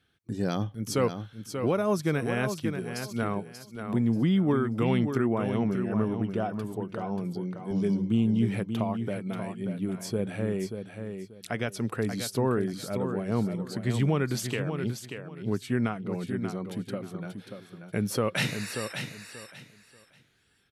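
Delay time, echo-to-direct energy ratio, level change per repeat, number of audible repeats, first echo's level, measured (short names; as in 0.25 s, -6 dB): 0.585 s, -7.5 dB, -13.0 dB, 3, -7.5 dB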